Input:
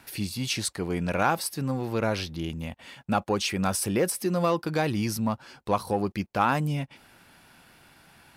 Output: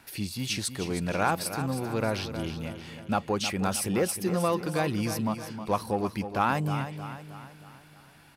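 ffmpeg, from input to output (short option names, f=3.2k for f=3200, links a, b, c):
-af "aecho=1:1:314|628|942|1256|1570:0.316|0.155|0.0759|0.0372|0.0182,volume=-2dB"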